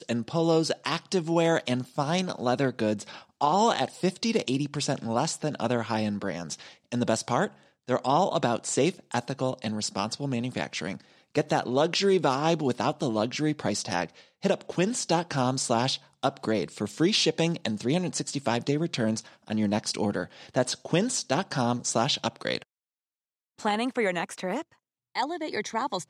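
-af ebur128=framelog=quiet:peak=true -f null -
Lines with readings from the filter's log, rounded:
Integrated loudness:
  I:         -27.8 LUFS
  Threshold: -37.9 LUFS
Loudness range:
  LRA:         2.7 LU
  Threshold: -48.0 LUFS
  LRA low:   -29.5 LUFS
  LRA high:  -26.7 LUFS
True peak:
  Peak:       -8.6 dBFS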